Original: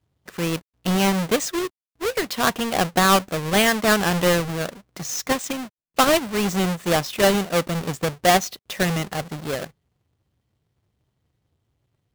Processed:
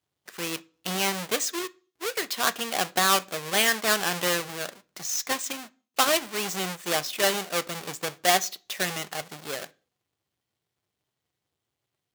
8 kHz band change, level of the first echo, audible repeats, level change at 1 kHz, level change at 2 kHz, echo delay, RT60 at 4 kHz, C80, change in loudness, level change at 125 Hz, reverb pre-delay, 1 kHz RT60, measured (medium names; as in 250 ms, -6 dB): -0.5 dB, no echo, no echo, -5.5 dB, -3.5 dB, no echo, 0.40 s, 29.0 dB, -4.5 dB, -15.0 dB, 3 ms, 0.35 s